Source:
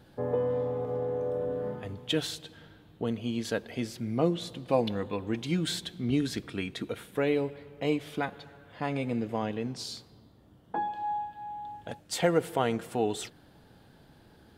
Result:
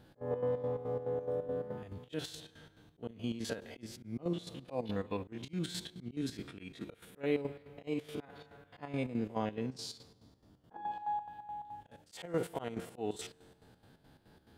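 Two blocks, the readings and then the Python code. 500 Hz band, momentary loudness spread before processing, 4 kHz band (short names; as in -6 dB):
-7.5 dB, 11 LU, -10.0 dB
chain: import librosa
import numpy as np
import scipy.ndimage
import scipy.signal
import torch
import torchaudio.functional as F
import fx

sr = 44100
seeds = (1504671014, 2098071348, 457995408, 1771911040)

y = fx.spec_steps(x, sr, hold_ms=50)
y = fx.comb_fb(y, sr, f0_hz=90.0, decay_s=1.8, harmonics='all', damping=0.0, mix_pct=40)
y = fx.auto_swell(y, sr, attack_ms=173.0)
y = fx.chopper(y, sr, hz=4.7, depth_pct=65, duty_pct=60)
y = y * 10.0 ** (1.5 / 20.0)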